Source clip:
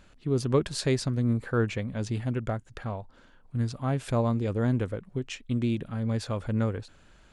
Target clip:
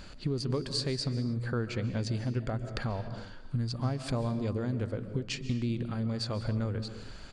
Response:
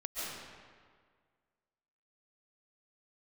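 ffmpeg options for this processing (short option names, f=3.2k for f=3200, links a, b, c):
-filter_complex "[0:a]equalizer=f=4.6k:t=o:w=0.23:g=14,acompressor=threshold=-39dB:ratio=6,asplit=2[a][b];[1:a]atrim=start_sample=2205,afade=t=out:st=0.36:d=0.01,atrim=end_sample=16317,lowshelf=f=450:g=9[c];[b][c]afir=irnorm=-1:irlink=0,volume=-12dB[d];[a][d]amix=inputs=2:normalize=0,aresample=22050,aresample=44100,volume=6.5dB"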